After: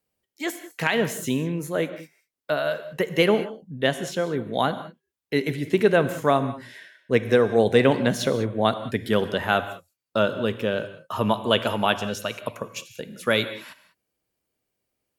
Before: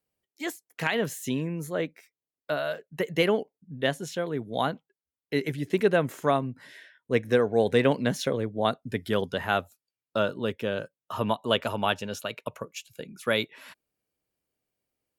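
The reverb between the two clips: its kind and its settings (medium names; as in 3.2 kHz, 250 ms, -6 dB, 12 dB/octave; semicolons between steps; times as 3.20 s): gated-style reverb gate 220 ms flat, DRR 11 dB; trim +4 dB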